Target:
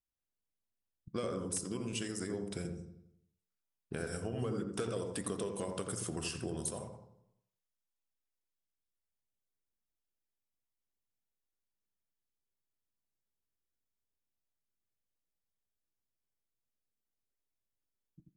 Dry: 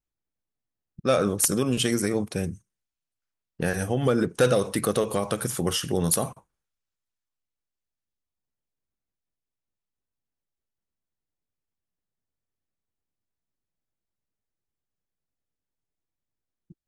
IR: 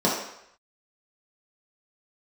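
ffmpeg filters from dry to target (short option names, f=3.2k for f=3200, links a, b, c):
-filter_complex "[0:a]highshelf=f=7.4k:g=5,acompressor=threshold=-27dB:ratio=6,asplit=2[a][b];[b]adelay=79,lowpass=f=890:p=1,volume=-3.5dB,asplit=2[c][d];[d]adelay=79,lowpass=f=890:p=1,volume=0.52,asplit=2[e][f];[f]adelay=79,lowpass=f=890:p=1,volume=0.52,asplit=2[g][h];[h]adelay=79,lowpass=f=890:p=1,volume=0.52,asplit=2[i][j];[j]adelay=79,lowpass=f=890:p=1,volume=0.52,asplit=2[k][l];[l]adelay=79,lowpass=f=890:p=1,volume=0.52,asplit=2[m][n];[n]adelay=79,lowpass=f=890:p=1,volume=0.52[o];[a][c][e][g][i][k][m][o]amix=inputs=8:normalize=0,asplit=2[p][q];[1:a]atrim=start_sample=2205,lowshelf=f=350:g=-9.5[r];[q][r]afir=irnorm=-1:irlink=0,volume=-25.5dB[s];[p][s]amix=inputs=2:normalize=0,asetrate=40517,aresample=44100,volume=-9dB"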